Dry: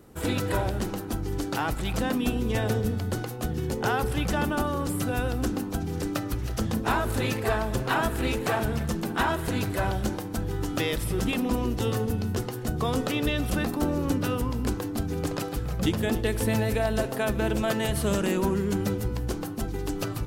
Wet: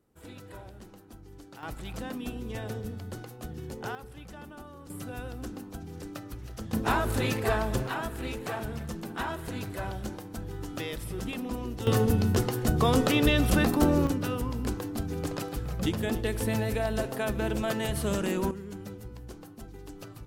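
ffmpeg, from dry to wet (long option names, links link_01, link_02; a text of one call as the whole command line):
ffmpeg -i in.wav -af "asetnsamples=nb_out_samples=441:pad=0,asendcmd='1.63 volume volume -10dB;3.95 volume volume -19dB;4.9 volume volume -11dB;6.73 volume volume -1dB;7.87 volume volume -8dB;11.87 volume volume 3.5dB;14.07 volume volume -3.5dB;18.51 volume volume -14dB',volume=-19dB" out.wav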